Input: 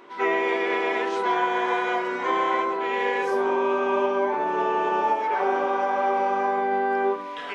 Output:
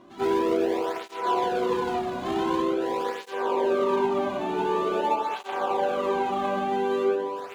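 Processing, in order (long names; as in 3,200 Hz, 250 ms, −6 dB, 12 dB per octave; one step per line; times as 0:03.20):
running median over 25 samples
low-shelf EQ 240 Hz +10.5 dB
feedback echo with a low-pass in the loop 91 ms, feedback 80%, low-pass 2,100 Hz, level −7 dB
through-zero flanger with one copy inverted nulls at 0.46 Hz, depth 2.3 ms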